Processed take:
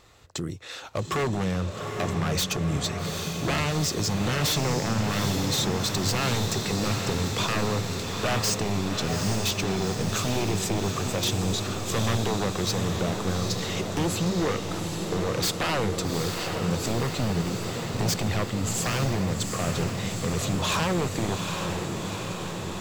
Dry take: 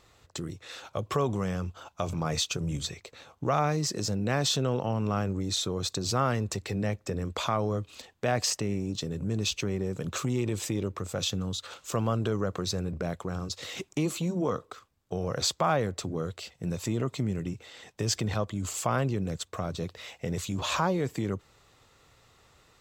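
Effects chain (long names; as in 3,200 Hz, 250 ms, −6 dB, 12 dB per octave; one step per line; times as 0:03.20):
wave folding −25 dBFS
feedback delay with all-pass diffusion 815 ms, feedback 72%, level −5 dB
level +4.5 dB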